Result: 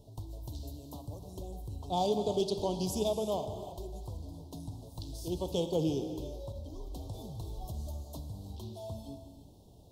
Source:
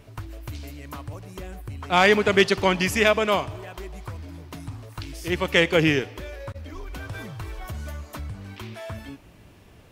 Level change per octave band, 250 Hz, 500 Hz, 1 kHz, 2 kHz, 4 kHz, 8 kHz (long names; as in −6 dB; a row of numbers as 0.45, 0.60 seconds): −9.0 dB, −10.0 dB, −12.0 dB, below −35 dB, −15.0 dB, −8.5 dB